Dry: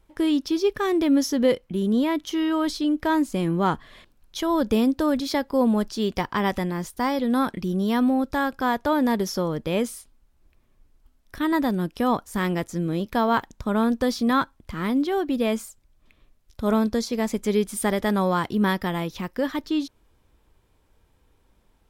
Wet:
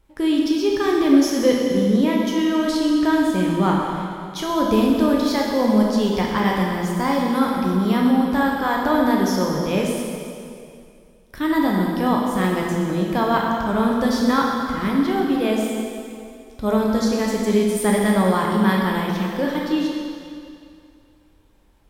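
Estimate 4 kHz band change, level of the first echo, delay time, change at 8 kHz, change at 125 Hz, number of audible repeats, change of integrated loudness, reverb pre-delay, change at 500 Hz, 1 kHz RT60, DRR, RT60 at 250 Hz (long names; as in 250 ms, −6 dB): +4.0 dB, no echo audible, no echo audible, +4.0 dB, +5.0 dB, no echo audible, +4.0 dB, 5 ms, +4.0 dB, 2.4 s, −2.0 dB, 2.4 s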